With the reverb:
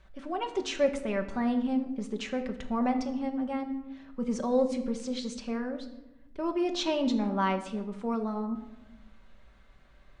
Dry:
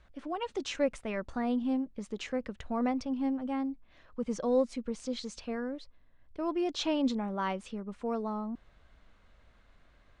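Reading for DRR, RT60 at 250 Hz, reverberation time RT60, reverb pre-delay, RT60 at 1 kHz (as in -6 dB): 4.0 dB, 1.5 s, 1.0 s, 5 ms, 0.90 s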